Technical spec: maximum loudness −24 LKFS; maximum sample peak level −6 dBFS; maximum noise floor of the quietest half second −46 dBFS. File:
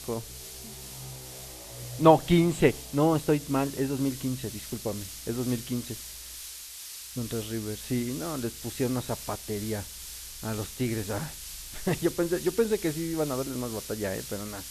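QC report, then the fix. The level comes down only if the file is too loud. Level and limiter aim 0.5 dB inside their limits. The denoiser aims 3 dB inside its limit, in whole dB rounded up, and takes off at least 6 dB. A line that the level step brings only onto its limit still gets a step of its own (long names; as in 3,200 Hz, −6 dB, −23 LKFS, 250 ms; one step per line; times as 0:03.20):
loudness −29.5 LKFS: in spec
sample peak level −5.0 dBFS: out of spec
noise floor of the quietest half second −43 dBFS: out of spec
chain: broadband denoise 6 dB, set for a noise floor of −43 dBFS
brickwall limiter −6.5 dBFS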